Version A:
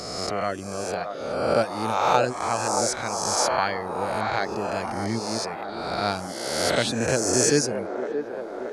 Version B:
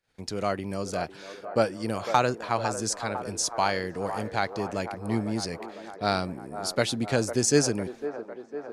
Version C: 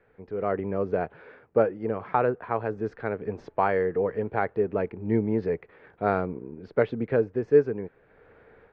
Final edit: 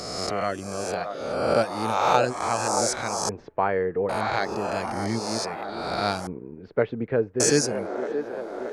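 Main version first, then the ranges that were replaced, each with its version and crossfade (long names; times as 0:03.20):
A
0:03.29–0:04.09: punch in from C
0:06.27–0:07.40: punch in from C
not used: B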